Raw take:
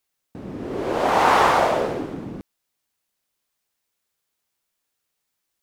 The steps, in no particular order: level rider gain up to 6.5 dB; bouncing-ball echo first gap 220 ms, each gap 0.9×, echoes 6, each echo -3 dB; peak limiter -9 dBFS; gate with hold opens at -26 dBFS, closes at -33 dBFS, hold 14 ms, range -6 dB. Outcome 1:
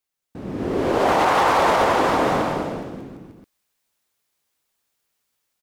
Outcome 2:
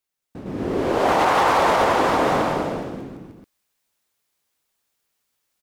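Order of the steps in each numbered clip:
level rider > gate with hold > bouncing-ball echo > peak limiter; gate with hold > bouncing-ball echo > level rider > peak limiter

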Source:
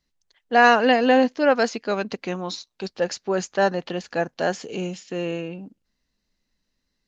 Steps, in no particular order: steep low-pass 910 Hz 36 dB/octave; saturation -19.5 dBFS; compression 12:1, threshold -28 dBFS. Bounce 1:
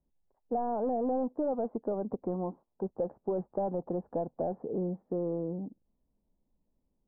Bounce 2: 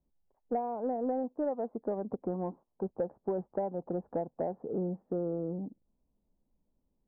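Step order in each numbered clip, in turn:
saturation > compression > steep low-pass; compression > steep low-pass > saturation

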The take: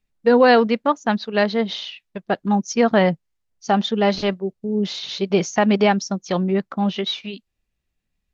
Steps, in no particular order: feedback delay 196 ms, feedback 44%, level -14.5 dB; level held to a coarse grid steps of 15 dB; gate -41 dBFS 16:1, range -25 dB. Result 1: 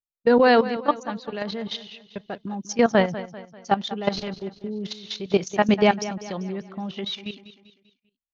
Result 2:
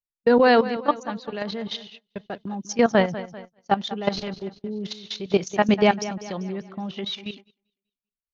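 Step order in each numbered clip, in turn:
gate > level held to a coarse grid > feedback delay; level held to a coarse grid > feedback delay > gate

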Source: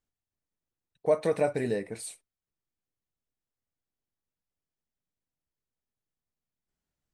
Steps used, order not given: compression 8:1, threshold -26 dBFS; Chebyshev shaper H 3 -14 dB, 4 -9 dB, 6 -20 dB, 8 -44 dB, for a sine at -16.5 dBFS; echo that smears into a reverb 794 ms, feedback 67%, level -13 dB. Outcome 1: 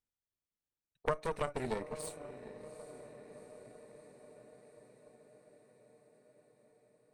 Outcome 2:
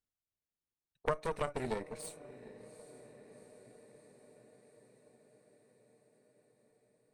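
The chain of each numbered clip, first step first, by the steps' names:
echo that smears into a reverb > compression > Chebyshev shaper; compression > echo that smears into a reverb > Chebyshev shaper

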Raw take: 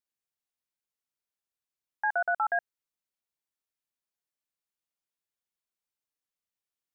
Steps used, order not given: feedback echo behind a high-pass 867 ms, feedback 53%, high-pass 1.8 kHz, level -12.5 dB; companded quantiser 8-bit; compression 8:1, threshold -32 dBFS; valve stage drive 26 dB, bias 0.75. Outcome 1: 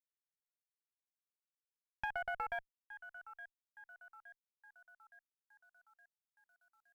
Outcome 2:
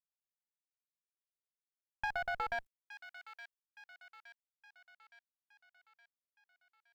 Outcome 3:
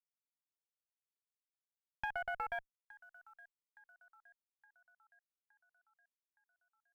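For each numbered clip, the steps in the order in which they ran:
feedback echo behind a high-pass > compression > companded quantiser > valve stage; valve stage > companded quantiser > feedback echo behind a high-pass > compression; compression > companded quantiser > feedback echo behind a high-pass > valve stage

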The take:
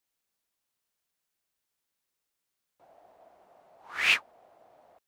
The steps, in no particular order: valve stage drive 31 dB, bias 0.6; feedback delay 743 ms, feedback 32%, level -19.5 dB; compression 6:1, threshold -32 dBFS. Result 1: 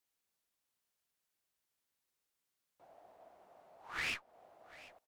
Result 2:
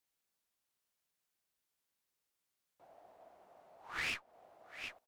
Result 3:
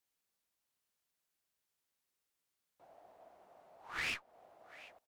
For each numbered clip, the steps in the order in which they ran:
compression > valve stage > feedback delay; feedback delay > compression > valve stage; compression > feedback delay > valve stage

